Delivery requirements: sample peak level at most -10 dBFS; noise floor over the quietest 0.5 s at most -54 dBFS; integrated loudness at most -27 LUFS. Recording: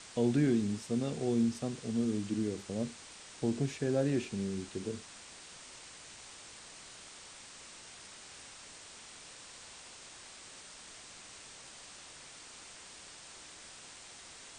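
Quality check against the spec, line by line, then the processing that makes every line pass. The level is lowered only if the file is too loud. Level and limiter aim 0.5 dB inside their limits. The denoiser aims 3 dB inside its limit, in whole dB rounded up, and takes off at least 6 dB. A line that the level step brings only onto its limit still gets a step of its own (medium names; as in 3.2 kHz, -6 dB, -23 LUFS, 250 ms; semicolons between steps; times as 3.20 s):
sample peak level -18.0 dBFS: pass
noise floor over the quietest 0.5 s -52 dBFS: fail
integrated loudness -33.5 LUFS: pass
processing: noise reduction 6 dB, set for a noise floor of -52 dBFS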